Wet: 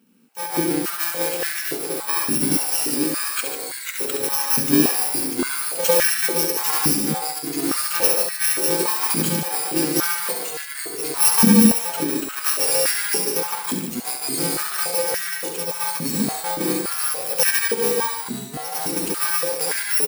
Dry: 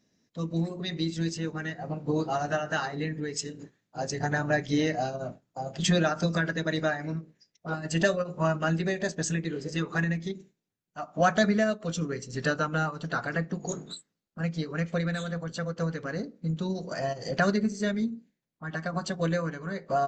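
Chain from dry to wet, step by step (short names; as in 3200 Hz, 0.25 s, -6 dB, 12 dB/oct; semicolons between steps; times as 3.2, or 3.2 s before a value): FFT order left unsorted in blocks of 64 samples; notch 1000 Hz, Q 5.4; echoes that change speed 82 ms, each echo -2 st, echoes 3, each echo -6 dB; on a send: tapped delay 68/146 ms -6/-8 dB; on the sum: stepped high-pass 3.5 Hz 230–1700 Hz; gain +5.5 dB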